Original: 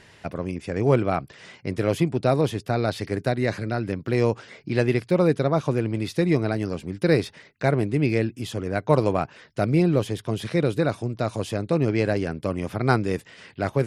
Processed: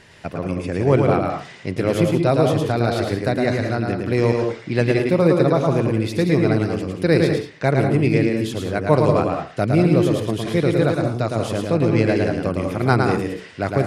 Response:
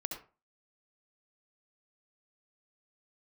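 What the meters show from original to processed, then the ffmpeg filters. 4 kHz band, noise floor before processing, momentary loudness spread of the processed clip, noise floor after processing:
+4.5 dB, -52 dBFS, 7 LU, -40 dBFS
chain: -filter_complex "[0:a]asplit=2[s0][s1];[1:a]atrim=start_sample=2205,adelay=110[s2];[s1][s2]afir=irnorm=-1:irlink=0,volume=0.794[s3];[s0][s3]amix=inputs=2:normalize=0,volume=1.33"

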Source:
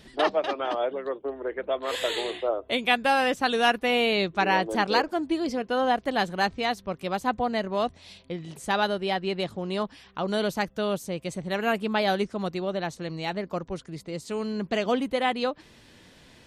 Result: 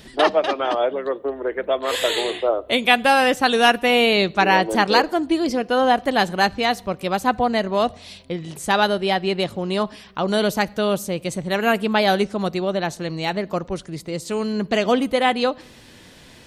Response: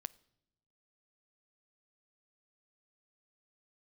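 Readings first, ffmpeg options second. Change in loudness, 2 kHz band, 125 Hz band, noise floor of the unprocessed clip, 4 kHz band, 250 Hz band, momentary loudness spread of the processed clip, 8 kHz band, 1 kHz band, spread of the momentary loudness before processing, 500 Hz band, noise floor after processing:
+7.0 dB, +7.0 dB, +6.5 dB, -54 dBFS, +7.5 dB, +6.5 dB, 10 LU, +9.0 dB, +6.5 dB, 10 LU, +6.5 dB, -46 dBFS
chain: -filter_complex "[0:a]asplit=2[s0][s1];[1:a]atrim=start_sample=2205,highshelf=f=8000:g=8[s2];[s1][s2]afir=irnorm=-1:irlink=0,volume=3.35[s3];[s0][s3]amix=inputs=2:normalize=0,volume=0.668"

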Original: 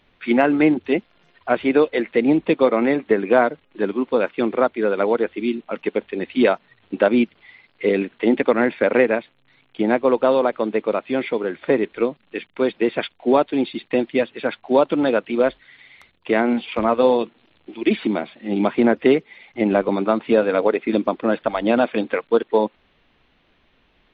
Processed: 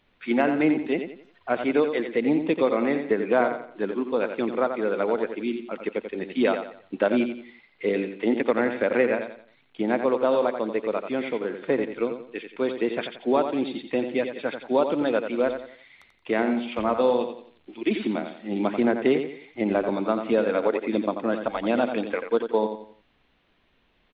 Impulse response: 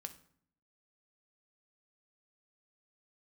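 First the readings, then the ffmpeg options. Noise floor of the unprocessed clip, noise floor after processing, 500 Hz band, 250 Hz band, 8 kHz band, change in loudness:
-61 dBFS, -65 dBFS, -5.0 dB, -5.5 dB, no reading, -5.5 dB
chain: -af "aecho=1:1:88|176|264|352:0.398|0.139|0.0488|0.0171,volume=0.501"

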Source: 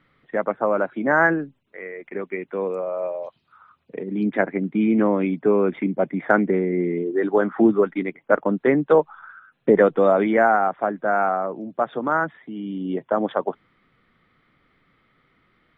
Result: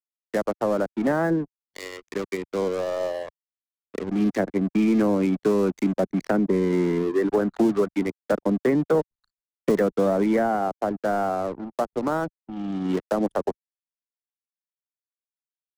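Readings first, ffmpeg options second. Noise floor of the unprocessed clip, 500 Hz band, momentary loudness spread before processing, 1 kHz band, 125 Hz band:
-68 dBFS, -3.5 dB, 14 LU, -6.0 dB, +1.0 dB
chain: -filter_complex "[0:a]aeval=exprs='sgn(val(0))*max(abs(val(0))-0.0168,0)':c=same,bass=f=250:g=3,treble=f=4000:g=13,acrossover=split=95|310|740[s0][s1][s2][s3];[s0]acompressor=threshold=0.00316:ratio=4[s4];[s1]acompressor=threshold=0.0631:ratio=4[s5];[s2]acompressor=threshold=0.0562:ratio=4[s6];[s3]acompressor=threshold=0.0158:ratio=4[s7];[s4][s5][s6][s7]amix=inputs=4:normalize=0,anlmdn=0.0631,asoftclip=type=tanh:threshold=0.211,adynamicequalizer=threshold=0.00501:dfrequency=2600:dqfactor=0.7:tfrequency=2600:tqfactor=0.7:attack=5:release=100:ratio=0.375:range=3:mode=cutabove:tftype=highshelf,volume=1.41"

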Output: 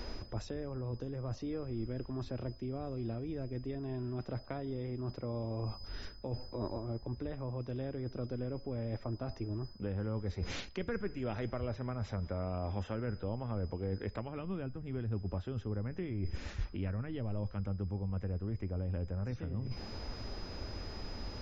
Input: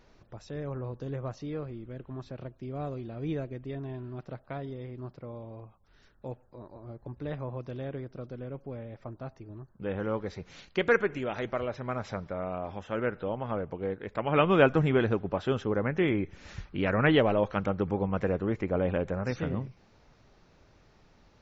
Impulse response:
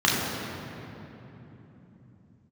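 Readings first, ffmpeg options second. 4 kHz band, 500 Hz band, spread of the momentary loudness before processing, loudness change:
-6.0 dB, -11.0 dB, 18 LU, -8.5 dB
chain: -filter_complex "[0:a]acrossover=split=170[s0][s1];[s1]acompressor=threshold=0.01:ratio=8[s2];[s0][s2]amix=inputs=2:normalize=0,aeval=exprs='val(0)+0.000708*sin(2*PI*5000*n/s)':c=same,lowshelf=f=350:g=8.5,areverse,acompressor=threshold=0.00631:ratio=10,areverse,equalizer=f=150:t=o:w=0.39:g=-15,volume=4.22"

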